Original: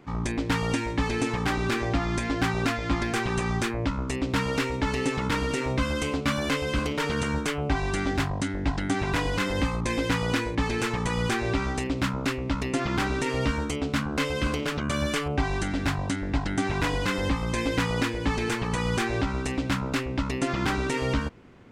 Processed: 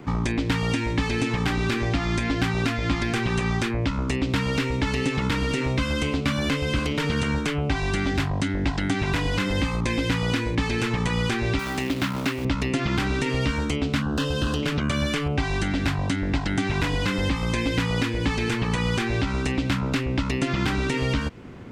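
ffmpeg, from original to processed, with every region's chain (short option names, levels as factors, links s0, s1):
-filter_complex "[0:a]asettb=1/sr,asplit=3[s0][s1][s2];[s0]atrim=end=11.594[s3];[s1]atrim=start=11.59:end=12.45,asetpts=PTS-STARTPTS,afade=t=in:d=0.004:c=qsin,afade=t=out:st=0.856:d=0.004:c=qsin,acrusher=bits=3:mode=log:mix=0:aa=0.000001,highpass=f=360:p=1,bandreject=f=480:w=6.6[s4];[s2]atrim=start=12.446[s5];[s3][s4]acrossfade=d=0.004:c1=hsin:c2=qsin[s6];[s6][s5]acrossfade=d=0.004:c1=qsin:c2=hsin,asettb=1/sr,asplit=3[s7][s8][s9];[s7]atrim=end=14.024[s10];[s8]atrim=start=14.02:end=14.63,asetpts=PTS-STARTPTS,afade=t=in:d=0.004:c=qsin,afade=t=out:st=0.606:d=0.004:c=qsin,asoftclip=type=hard:threshold=0.075,asuperstop=centerf=2200:order=4:qfactor=2.6[s11];[s9]atrim=start=14.626[s12];[s10][s11]acrossfade=d=0.004:c1=hsin:c2=qsin[s13];[s13][s12]acrossfade=d=0.004:c1=qsin:c2=hsin,equalizer=f=120:w=0.38:g=4.5,acrossover=split=280|2000|4500[s14][s15][s16][s17];[s14]acompressor=threshold=0.0224:ratio=4[s18];[s15]acompressor=threshold=0.0112:ratio=4[s19];[s16]acompressor=threshold=0.0112:ratio=4[s20];[s17]acompressor=threshold=0.00224:ratio=4[s21];[s18][s19][s20][s21]amix=inputs=4:normalize=0,volume=2.51"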